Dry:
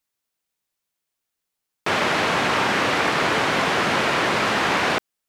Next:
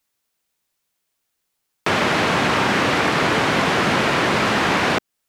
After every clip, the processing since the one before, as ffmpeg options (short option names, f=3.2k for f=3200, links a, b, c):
-filter_complex "[0:a]acrossover=split=320[a][b];[b]acompressor=threshold=-32dB:ratio=1.5[c];[a][c]amix=inputs=2:normalize=0,volume=6.5dB"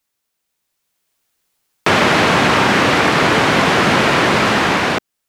-af "dynaudnorm=f=380:g=5:m=11.5dB"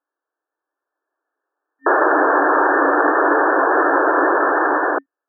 -af "afftfilt=real='re*between(b*sr/4096,270,1800)':imag='im*between(b*sr/4096,270,1800)':win_size=4096:overlap=0.75"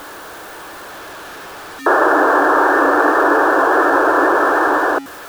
-af "aeval=exprs='val(0)+0.5*0.0398*sgn(val(0))':c=same,volume=1.5dB"